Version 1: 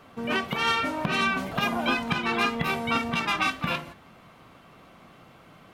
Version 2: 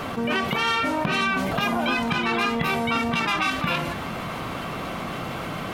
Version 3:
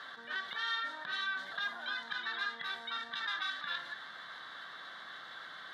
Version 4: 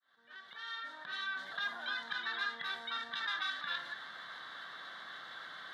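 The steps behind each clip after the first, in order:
envelope flattener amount 70%
pair of resonant band-passes 2,500 Hz, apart 1.1 octaves; level −3 dB
fade in at the beginning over 1.74 s

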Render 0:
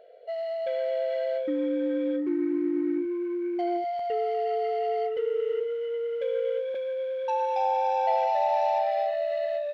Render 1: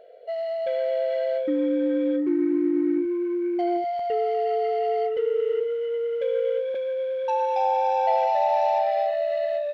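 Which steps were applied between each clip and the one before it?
low-shelf EQ 430 Hz +3.5 dB
level +2 dB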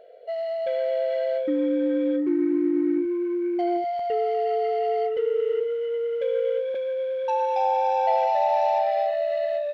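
no processing that can be heard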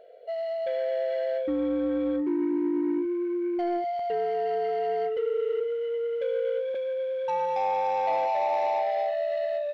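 soft clipping −17.5 dBFS, distortion −19 dB
level −2 dB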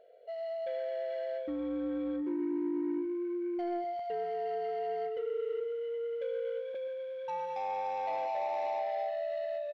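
single-tap delay 129 ms −13.5 dB
level −8 dB

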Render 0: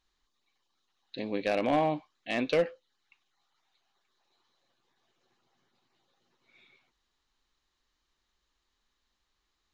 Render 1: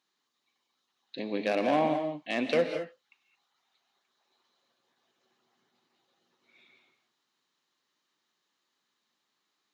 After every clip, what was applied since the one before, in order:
high-pass filter 150 Hz 24 dB per octave
reverb whose tail is shaped and stops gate 240 ms rising, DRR 6 dB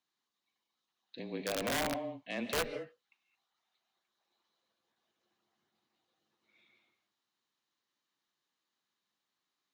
wrap-around overflow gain 18.5 dB
frequency shifter −24 Hz
level −7.5 dB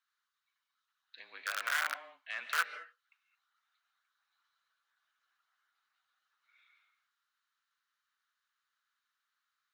high-pass with resonance 1,400 Hz, resonance Q 5.5
level −3 dB

